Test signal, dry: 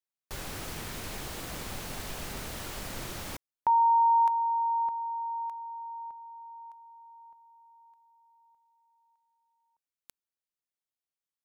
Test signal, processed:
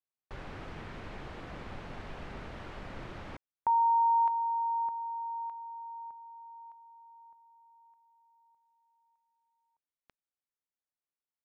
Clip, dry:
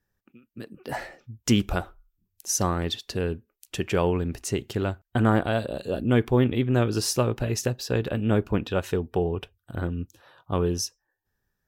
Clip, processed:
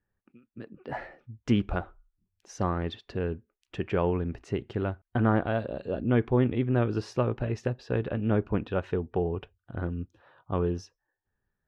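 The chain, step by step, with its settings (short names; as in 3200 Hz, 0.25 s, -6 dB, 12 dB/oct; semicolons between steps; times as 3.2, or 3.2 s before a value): LPF 2200 Hz 12 dB/oct; gain -3 dB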